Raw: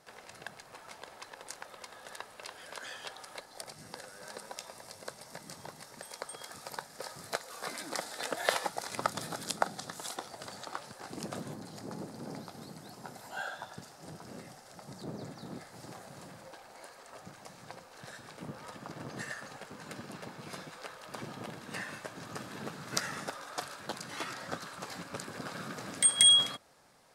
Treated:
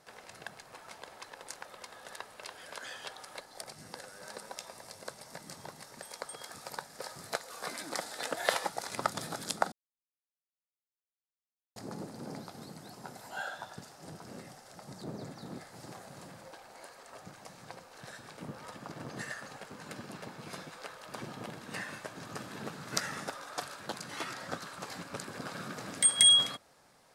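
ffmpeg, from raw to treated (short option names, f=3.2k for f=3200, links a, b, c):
-filter_complex "[0:a]asplit=3[a][b][c];[a]atrim=end=9.72,asetpts=PTS-STARTPTS,afade=t=out:st=9.716:d=0.004:c=hsin[d];[b]atrim=start=9.72:end=11.76,asetpts=PTS-STARTPTS,volume=0[e];[c]atrim=start=11.76,asetpts=PTS-STARTPTS,afade=t=in:d=0.004:c=hsin[f];[d][e][f]concat=n=3:v=0:a=1"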